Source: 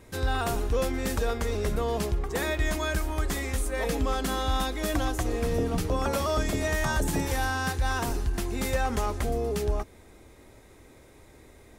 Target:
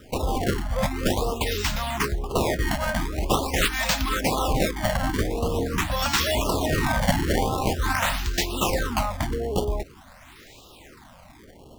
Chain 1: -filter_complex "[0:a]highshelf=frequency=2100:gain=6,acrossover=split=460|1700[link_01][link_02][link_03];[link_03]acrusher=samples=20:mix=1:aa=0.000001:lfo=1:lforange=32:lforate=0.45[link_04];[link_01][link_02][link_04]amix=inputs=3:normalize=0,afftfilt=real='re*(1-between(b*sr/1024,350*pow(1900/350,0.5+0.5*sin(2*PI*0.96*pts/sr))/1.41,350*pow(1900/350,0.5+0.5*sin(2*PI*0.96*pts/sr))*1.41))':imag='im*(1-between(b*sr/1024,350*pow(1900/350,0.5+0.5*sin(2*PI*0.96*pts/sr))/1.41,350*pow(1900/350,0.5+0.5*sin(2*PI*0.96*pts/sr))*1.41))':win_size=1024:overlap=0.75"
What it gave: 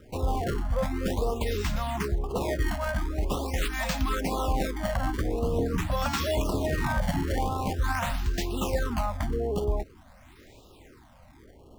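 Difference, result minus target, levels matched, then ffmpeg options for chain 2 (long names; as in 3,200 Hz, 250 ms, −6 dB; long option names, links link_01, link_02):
4,000 Hz band −5.0 dB
-filter_complex "[0:a]highshelf=frequency=2100:gain=17.5,acrossover=split=460|1700[link_01][link_02][link_03];[link_03]acrusher=samples=20:mix=1:aa=0.000001:lfo=1:lforange=32:lforate=0.45[link_04];[link_01][link_02][link_04]amix=inputs=3:normalize=0,afftfilt=real='re*(1-between(b*sr/1024,350*pow(1900/350,0.5+0.5*sin(2*PI*0.96*pts/sr))/1.41,350*pow(1900/350,0.5+0.5*sin(2*PI*0.96*pts/sr))*1.41))':imag='im*(1-between(b*sr/1024,350*pow(1900/350,0.5+0.5*sin(2*PI*0.96*pts/sr))/1.41,350*pow(1900/350,0.5+0.5*sin(2*PI*0.96*pts/sr))*1.41))':win_size=1024:overlap=0.75"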